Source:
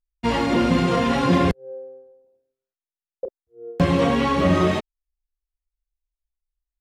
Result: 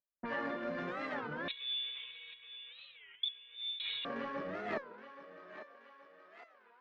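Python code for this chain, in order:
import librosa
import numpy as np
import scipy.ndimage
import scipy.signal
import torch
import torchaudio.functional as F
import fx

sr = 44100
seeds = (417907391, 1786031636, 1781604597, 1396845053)

y = fx.wiener(x, sr, points=15)
y = fx.env_lowpass(y, sr, base_hz=970.0, full_db=-15.0)
y = scipy.signal.sosfilt(scipy.signal.butter(2, 240.0, 'highpass', fs=sr, output='sos'), y)
y = fx.peak_eq(y, sr, hz=1600.0, db=12.5, octaves=0.43)
y = fx.over_compress(y, sr, threshold_db=-29.0, ratio=-1.0)
y = fx.air_absorb(y, sr, metres=220.0)
y = fx.comb_fb(y, sr, f0_hz=590.0, decay_s=0.23, harmonics='all', damping=0.0, mix_pct=90)
y = fx.echo_thinned(y, sr, ms=824, feedback_pct=60, hz=480.0, wet_db=-10.5)
y = fx.freq_invert(y, sr, carrier_hz=4000, at=(1.48, 4.05))
y = fx.record_warp(y, sr, rpm=33.33, depth_cents=250.0)
y = y * 10.0 ** (7.0 / 20.0)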